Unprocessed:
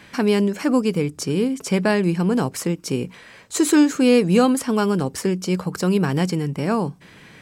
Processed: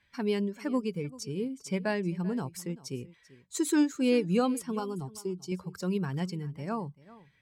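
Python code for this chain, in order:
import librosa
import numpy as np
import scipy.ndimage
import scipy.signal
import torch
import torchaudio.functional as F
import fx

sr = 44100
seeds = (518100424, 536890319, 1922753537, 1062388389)

y = fx.bin_expand(x, sr, power=1.5)
y = fx.fixed_phaser(y, sr, hz=350.0, stages=8, at=(4.79, 5.52))
y = y + 10.0 ** (-19.5 / 20.0) * np.pad(y, (int(389 * sr / 1000.0), 0))[:len(y)]
y = F.gain(torch.from_numpy(y), -9.0).numpy()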